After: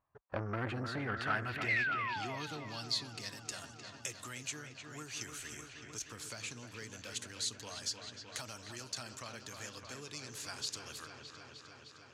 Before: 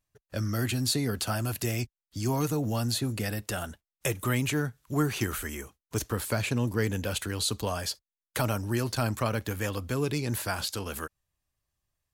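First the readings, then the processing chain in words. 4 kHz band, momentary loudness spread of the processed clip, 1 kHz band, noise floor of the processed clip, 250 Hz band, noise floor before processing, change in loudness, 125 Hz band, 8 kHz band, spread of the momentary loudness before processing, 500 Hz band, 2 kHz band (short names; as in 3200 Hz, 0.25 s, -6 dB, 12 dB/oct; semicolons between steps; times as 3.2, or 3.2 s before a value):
-6.0 dB, 12 LU, -6.0 dB, -57 dBFS, -15.5 dB, under -85 dBFS, -9.5 dB, -16.5 dB, -7.0 dB, 8 LU, -14.0 dB, -2.5 dB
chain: painted sound fall, 1.68–2.37, 590–2200 Hz -33 dBFS; on a send: dark delay 0.306 s, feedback 77%, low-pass 3800 Hz, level -8.5 dB; on the sum: compressor 2:1, threshold -31 dBFS, peak gain reduction 6.5 dB; RIAA curve playback; band-pass sweep 1000 Hz -> 6500 Hz, 0.47–3.4; core saturation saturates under 990 Hz; gain +11.5 dB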